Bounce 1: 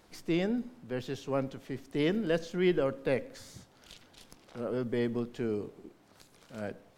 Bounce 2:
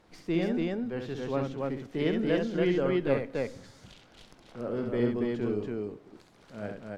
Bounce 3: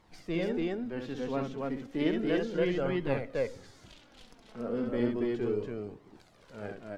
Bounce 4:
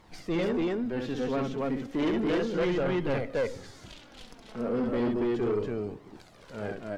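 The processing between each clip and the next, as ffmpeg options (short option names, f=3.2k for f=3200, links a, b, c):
-af "aemphasis=mode=reproduction:type=50kf,aecho=1:1:67.06|282.8:0.562|0.794"
-af "flanger=delay=0.9:depth=3.8:regen=39:speed=0.33:shape=triangular,volume=2.5dB"
-af "asoftclip=type=tanh:threshold=-29.5dB,volume=6.5dB"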